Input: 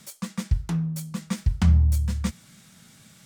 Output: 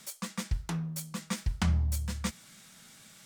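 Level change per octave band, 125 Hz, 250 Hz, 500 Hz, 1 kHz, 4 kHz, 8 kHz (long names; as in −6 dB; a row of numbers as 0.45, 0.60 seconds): −9.5, −7.5, −2.0, −0.5, 0.0, 0.0 decibels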